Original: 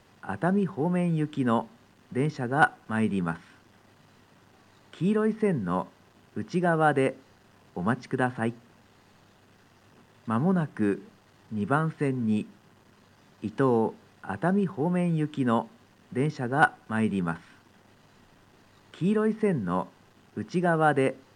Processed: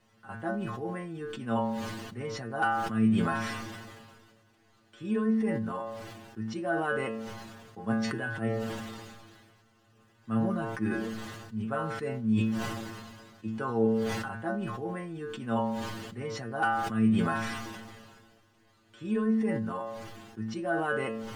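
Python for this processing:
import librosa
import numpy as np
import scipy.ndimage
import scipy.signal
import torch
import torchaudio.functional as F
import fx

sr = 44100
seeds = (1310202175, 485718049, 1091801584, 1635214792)

y = fx.notch(x, sr, hz=910.0, q=21.0)
y = fx.stiff_resonator(y, sr, f0_hz=110.0, decay_s=0.38, stiffness=0.002)
y = fx.sustainer(y, sr, db_per_s=31.0)
y = y * 10.0 ** (4.0 / 20.0)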